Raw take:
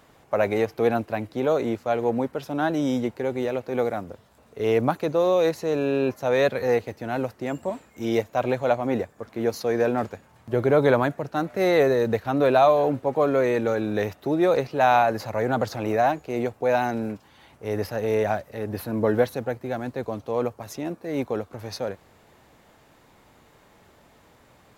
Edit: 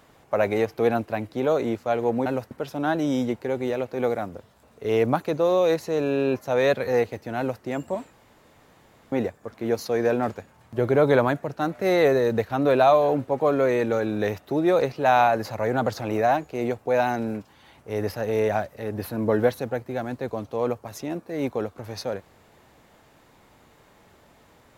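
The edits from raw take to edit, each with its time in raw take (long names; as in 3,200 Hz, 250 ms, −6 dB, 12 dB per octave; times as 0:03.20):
0:07.13–0:07.38: duplicate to 0:02.26
0:07.88–0:08.87: fill with room tone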